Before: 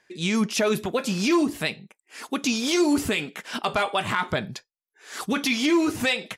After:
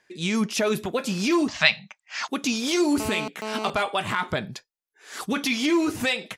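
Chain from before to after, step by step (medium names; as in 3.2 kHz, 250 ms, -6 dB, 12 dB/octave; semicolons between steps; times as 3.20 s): 1.48–2.28 s: FFT filter 200 Hz 0 dB, 370 Hz -24 dB, 610 Hz +6 dB, 1.2 kHz +11 dB, 6.3 kHz +11 dB, 11 kHz -27 dB; 3.00–3.70 s: mobile phone buzz -30 dBFS; trim -1 dB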